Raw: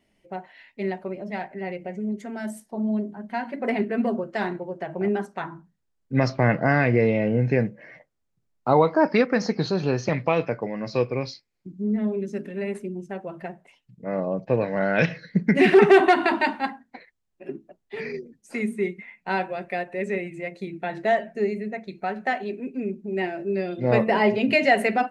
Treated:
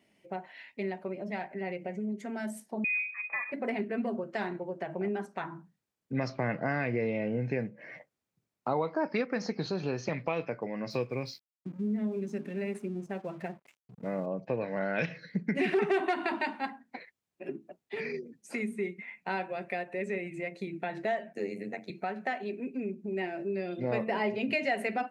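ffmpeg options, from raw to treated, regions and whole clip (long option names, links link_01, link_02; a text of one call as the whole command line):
ffmpeg -i in.wav -filter_complex "[0:a]asettb=1/sr,asplit=3[link_01][link_02][link_03];[link_01]atrim=end=2.844[link_04];[link_02]atrim=start=2.84:end=3.52,asetpts=PTS-STARTPTS,afade=type=in:duration=0.004:curve=qsin,afade=type=out:start_time=0.676:duration=0.004:curve=qsin,bandreject=frequency=358.8:width_type=h:width=4,bandreject=frequency=717.6:width_type=h:width=4,bandreject=frequency=1076.4:width_type=h:width=4,bandreject=frequency=1435.2:width_type=h:width=4,bandreject=frequency=1794:width_type=h:width=4,bandreject=frequency=2152.8:width_type=h:width=4,bandreject=frequency=2511.6:width_type=h:width=4,bandreject=frequency=2870.4:width_type=h:width=4,bandreject=frequency=3229.2:width_type=h:width=4,bandreject=frequency=3588:width_type=h:width=4,bandreject=frequency=3946.8:width_type=h:width=4,bandreject=frequency=4305.6:width_type=h:width=4,bandreject=frequency=4664.4:width_type=h:width=4,bandreject=frequency=5023.2:width_type=h:width=4,bandreject=frequency=5382:width_type=h:width=4,bandreject=frequency=5740.8:width_type=h:width=4,bandreject=frequency=6099.6:width_type=h:width=4,bandreject=frequency=6458.4:width_type=h:width=4,bandreject=frequency=6817.2:width_type=h:width=4,bandreject=frequency=7176:width_type=h:width=4,bandreject=frequency=7534.8:width_type=h:width=4,bandreject=frequency=7893.6:width_type=h:width=4,bandreject=frequency=8252.4:width_type=h:width=4,bandreject=frequency=8611.2:width_type=h:width=4,bandreject=frequency=8970:width_type=h:width=4,bandreject=frequency=9328.8:width_type=h:width=4,bandreject=frequency=9687.6:width_type=h:width=4,bandreject=frequency=10046.4:width_type=h:width=4,bandreject=frequency=10405.2:width_type=h:width=4,bandreject=frequency=10764:width_type=h:width=4,bandreject=frequency=11122.8:width_type=h:width=4,bandreject=frequency=11481.6:width_type=h:width=4,bandreject=frequency=11840.4:width_type=h:width=4,bandreject=frequency=12199.2:width_type=h:width=4,bandreject=frequency=12558:width_type=h:width=4,bandreject=frequency=12916.8:width_type=h:width=4,bandreject=frequency=13275.6:width_type=h:width=4,lowpass=frequency=2300:width_type=q:width=0.5098,lowpass=frequency=2300:width_type=q:width=0.6013,lowpass=frequency=2300:width_type=q:width=0.9,lowpass=frequency=2300:width_type=q:width=2.563,afreqshift=-2700[link_05];[link_03]atrim=start=3.516[link_06];[link_04][link_05]acrossfade=duration=0.004:curve1=hsin:curve2=qsin[link_07];[link_07][link_06]acrossfade=duration=0.004:curve1=qsin:curve2=hsin,asettb=1/sr,asplit=3[link_08][link_09][link_10];[link_08]atrim=end=10.904[link_11];[link_09]atrim=start=10.9:end=14.26,asetpts=PTS-STARTPTS,afade=type=in:duration=0.004:curve=qsin,afade=type=out:start_time=3.356:duration=0.004:curve=qsin,bass=frequency=250:gain=4,treble=frequency=4000:gain=2,aeval=exprs='sgn(val(0))*max(abs(val(0))-0.002,0)':channel_layout=same[link_12];[link_10]atrim=start=14.256[link_13];[link_11][link_12]acrossfade=duration=0.004:curve1=hsin:curve2=qsin[link_14];[link_14][link_13]acrossfade=duration=0.004:curve1=qsin:curve2=hsin,asettb=1/sr,asplit=3[link_15][link_16][link_17];[link_15]atrim=end=21.334[link_18];[link_16]atrim=start=21.33:end=21.9,asetpts=PTS-STARTPTS,afade=type=in:duration=0.004:curve=qsin,afade=type=out:start_time=0.566:duration=0.004:curve=qsin,tremolo=f=94:d=0.857,highpass=frequency=150:width=0.5412,highpass=frequency=150:width=1.3066,aemphasis=mode=production:type=cd[link_19];[link_17]atrim=start=21.896[link_20];[link_18][link_19]acrossfade=duration=0.004:curve1=hsin:curve2=qsin[link_21];[link_21][link_20]acrossfade=duration=0.004:curve1=qsin:curve2=hsin,highpass=120,equalizer=frequency=2400:width_type=o:width=0.27:gain=3,acompressor=threshold=-36dB:ratio=2" out.wav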